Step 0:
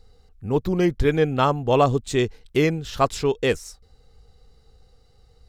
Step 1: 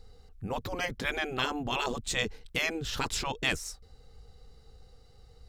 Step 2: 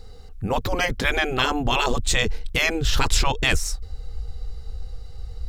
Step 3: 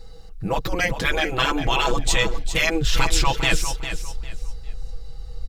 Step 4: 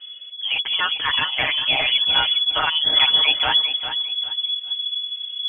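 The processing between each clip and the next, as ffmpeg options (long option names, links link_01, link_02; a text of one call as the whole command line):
ffmpeg -i in.wav -af "afftfilt=real='re*lt(hypot(re,im),0.282)':imag='im*lt(hypot(re,im),0.282)':win_size=1024:overlap=0.75" out.wav
ffmpeg -i in.wav -filter_complex "[0:a]asplit=2[link_01][link_02];[link_02]alimiter=limit=-21.5dB:level=0:latency=1:release=58,volume=1dB[link_03];[link_01][link_03]amix=inputs=2:normalize=0,asubboost=boost=5:cutoff=92,volume=4dB" out.wav
ffmpeg -i in.wav -filter_complex "[0:a]aecho=1:1:6.1:0.7,asplit=2[link_01][link_02];[link_02]aecho=0:1:402|804|1206:0.316|0.0822|0.0214[link_03];[link_01][link_03]amix=inputs=2:normalize=0,volume=-1.5dB" out.wav
ffmpeg -i in.wav -af "lowpass=frequency=2900:width_type=q:width=0.5098,lowpass=frequency=2900:width_type=q:width=0.6013,lowpass=frequency=2900:width_type=q:width=0.9,lowpass=frequency=2900:width_type=q:width=2.563,afreqshift=-3400" out.wav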